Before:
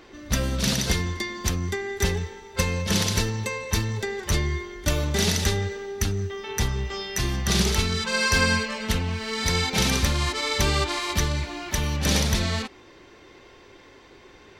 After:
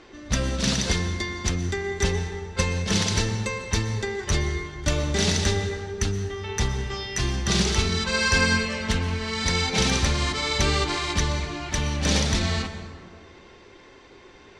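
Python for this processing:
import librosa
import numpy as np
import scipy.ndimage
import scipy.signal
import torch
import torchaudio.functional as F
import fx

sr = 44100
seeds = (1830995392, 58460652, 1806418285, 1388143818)

y = scipy.signal.sosfilt(scipy.signal.butter(4, 8600.0, 'lowpass', fs=sr, output='sos'), x)
y = fx.rev_plate(y, sr, seeds[0], rt60_s=2.0, hf_ratio=0.45, predelay_ms=105, drr_db=9.5)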